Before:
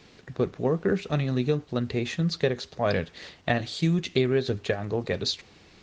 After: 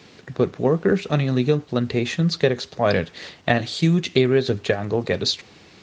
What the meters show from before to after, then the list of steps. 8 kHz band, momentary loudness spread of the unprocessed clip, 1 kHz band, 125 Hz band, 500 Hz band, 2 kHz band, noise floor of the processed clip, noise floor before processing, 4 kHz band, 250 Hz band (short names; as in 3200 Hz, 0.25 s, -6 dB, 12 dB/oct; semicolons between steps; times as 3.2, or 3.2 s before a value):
n/a, 6 LU, +6.0 dB, +5.5 dB, +6.0 dB, +6.0 dB, -49 dBFS, -55 dBFS, +6.0 dB, +6.0 dB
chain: HPF 87 Hz; gain +6 dB